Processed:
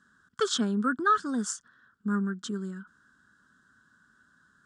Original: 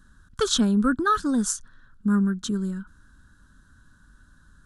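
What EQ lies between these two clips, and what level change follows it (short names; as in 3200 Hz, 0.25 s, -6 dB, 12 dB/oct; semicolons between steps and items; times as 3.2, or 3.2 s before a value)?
speaker cabinet 280–7300 Hz, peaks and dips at 300 Hz -7 dB, 550 Hz -7 dB, 910 Hz -7 dB, 2500 Hz -7 dB, 4000 Hz -8 dB, 6100 Hz -7 dB; 0.0 dB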